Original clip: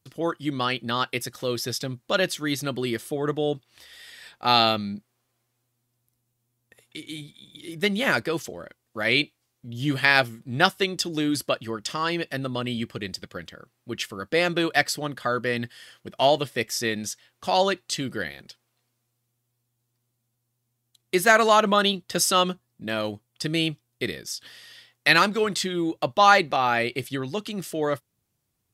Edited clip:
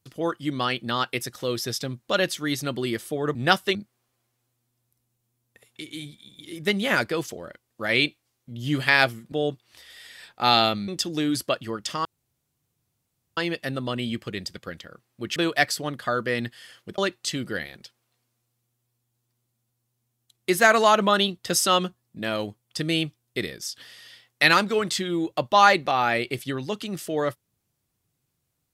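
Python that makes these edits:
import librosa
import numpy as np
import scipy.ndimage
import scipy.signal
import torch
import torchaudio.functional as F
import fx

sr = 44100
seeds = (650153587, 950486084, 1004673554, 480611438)

y = fx.edit(x, sr, fx.swap(start_s=3.35, length_s=1.56, other_s=10.48, other_length_s=0.4),
    fx.insert_room_tone(at_s=12.05, length_s=1.32),
    fx.cut(start_s=14.04, length_s=0.5),
    fx.cut(start_s=16.16, length_s=1.47), tone=tone)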